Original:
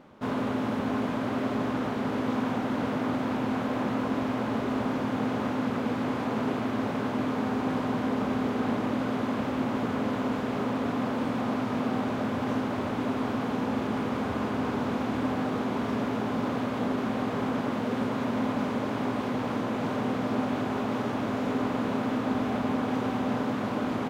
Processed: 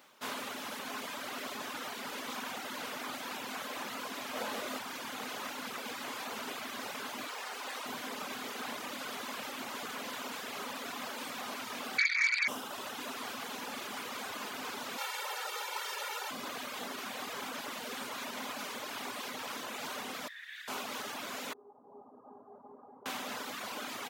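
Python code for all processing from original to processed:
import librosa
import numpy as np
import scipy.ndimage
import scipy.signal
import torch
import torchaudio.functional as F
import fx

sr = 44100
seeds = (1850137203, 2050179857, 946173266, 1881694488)

y = fx.chain(x, sr, fx.peak_eq(hz=550.0, db=6.5, octaves=0.64),
    fx.doubler(ms=23.0, db=-4.5), at=(4.33, 4.78))
y = fx.chain(y, sr, fx.highpass(hz=410.0, slope=12),
    fx.doppler_dist(depth_ms=0.32), at=(7.27, 7.86))
y = fx.chain(y, sr, fx.low_shelf(hz=270.0, db=4.0),
    fx.freq_invert(carrier_hz=2500),
    fx.transformer_sat(knee_hz=1500.0), at=(11.98, 12.48))
y = fx.chain(y, sr, fx.highpass(hz=500.0, slope=24),
    fx.comb(ms=2.2, depth=0.96), at=(14.98, 16.31))
y = fx.chain(y, sr, fx.ladder_highpass(hz=1700.0, resonance_pct=80),
    fx.peak_eq(hz=3600.0, db=9.5, octaves=0.21), at=(20.28, 20.68))
y = fx.chain(y, sr, fx.steep_lowpass(hz=1000.0, slope=36),
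    fx.comb_fb(f0_hz=410.0, decay_s=0.18, harmonics='all', damping=0.0, mix_pct=80), at=(21.53, 23.06))
y = scipy.signal.sosfilt(scipy.signal.butter(2, 82.0, 'highpass', fs=sr, output='sos'), y)
y = fx.dereverb_blind(y, sr, rt60_s=1.2)
y = np.diff(y, prepend=0.0)
y = y * 10.0 ** (12.0 / 20.0)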